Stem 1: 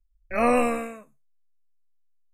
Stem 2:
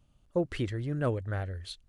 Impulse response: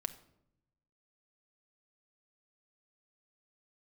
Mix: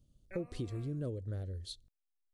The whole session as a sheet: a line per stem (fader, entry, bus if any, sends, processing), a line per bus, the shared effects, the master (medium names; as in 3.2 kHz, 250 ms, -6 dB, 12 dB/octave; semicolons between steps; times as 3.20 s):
-15.5 dB, 0.00 s, no send, compressor with a negative ratio -28 dBFS, ratio -1; auto duck -15 dB, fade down 0.95 s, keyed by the second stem
-2.5 dB, 0.00 s, send -22.5 dB, high-order bell 1.4 kHz -15.5 dB 2.3 oct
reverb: on, RT60 0.75 s, pre-delay 6 ms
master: compression 4:1, threshold -35 dBFS, peak gain reduction 8.5 dB